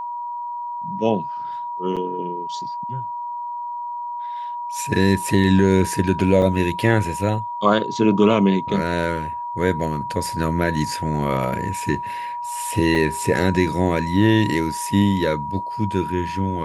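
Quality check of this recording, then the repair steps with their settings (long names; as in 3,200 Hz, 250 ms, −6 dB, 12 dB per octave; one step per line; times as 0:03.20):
whistle 960 Hz −26 dBFS
0:01.96–0:01.97: drop-out 6.8 ms
0:06.42: drop-out 2.1 ms
0:12.95: drop-out 3.3 ms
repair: notch filter 960 Hz, Q 30
repair the gap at 0:01.96, 6.8 ms
repair the gap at 0:06.42, 2.1 ms
repair the gap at 0:12.95, 3.3 ms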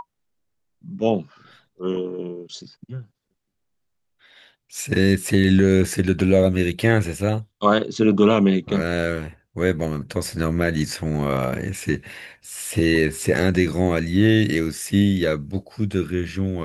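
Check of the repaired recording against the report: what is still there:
none of them is left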